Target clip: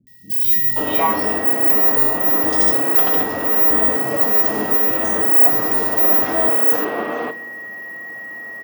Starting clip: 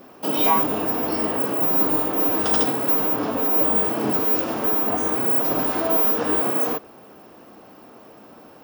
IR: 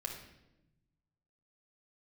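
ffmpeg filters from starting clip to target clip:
-filter_complex "[0:a]aeval=exprs='val(0)+0.0251*sin(2*PI*1900*n/s)':channel_layout=same,acrossover=split=170|3800[link_01][link_02][link_03];[link_03]adelay=70[link_04];[link_02]adelay=530[link_05];[link_01][link_05][link_04]amix=inputs=3:normalize=0,asplit=2[link_06][link_07];[1:a]atrim=start_sample=2205,highshelf=frequency=5100:gain=11.5[link_08];[link_07][link_08]afir=irnorm=-1:irlink=0,volume=-7.5dB[link_09];[link_06][link_09]amix=inputs=2:normalize=0"

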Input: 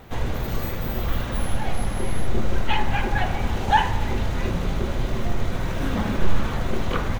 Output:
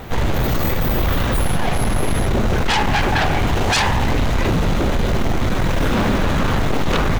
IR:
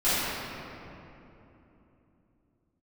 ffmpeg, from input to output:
-af "aeval=exprs='0.562*sin(PI/2*6.31*val(0)/0.562)':channel_layout=same,volume=-8dB"

